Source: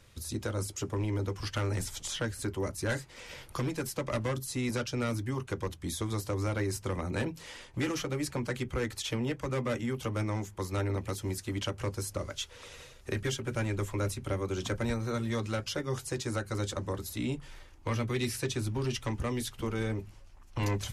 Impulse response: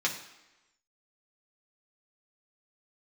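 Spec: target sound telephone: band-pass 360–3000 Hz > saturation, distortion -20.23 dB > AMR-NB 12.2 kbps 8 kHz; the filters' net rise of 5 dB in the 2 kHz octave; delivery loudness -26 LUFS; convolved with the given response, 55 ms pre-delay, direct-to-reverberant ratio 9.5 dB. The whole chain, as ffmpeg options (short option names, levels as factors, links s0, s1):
-filter_complex "[0:a]equalizer=f=2000:t=o:g=7,asplit=2[s0][s1];[1:a]atrim=start_sample=2205,adelay=55[s2];[s1][s2]afir=irnorm=-1:irlink=0,volume=0.133[s3];[s0][s3]amix=inputs=2:normalize=0,highpass=360,lowpass=3000,asoftclip=threshold=0.0668,volume=3.98" -ar 8000 -c:a libopencore_amrnb -b:a 12200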